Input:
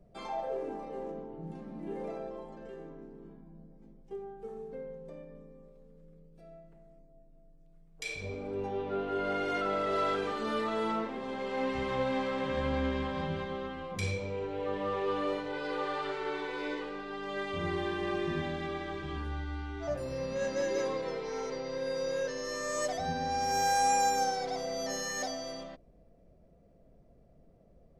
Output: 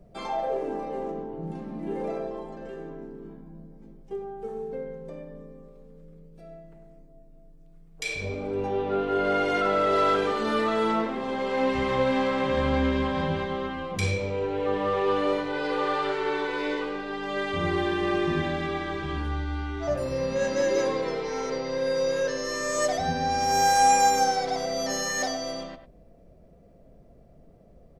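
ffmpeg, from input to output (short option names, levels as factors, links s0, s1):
-filter_complex "[0:a]asplit=2[s0][s1];[s1]adelay=100,highpass=300,lowpass=3400,asoftclip=type=hard:threshold=0.0447,volume=0.316[s2];[s0][s2]amix=inputs=2:normalize=0,volume=2.24"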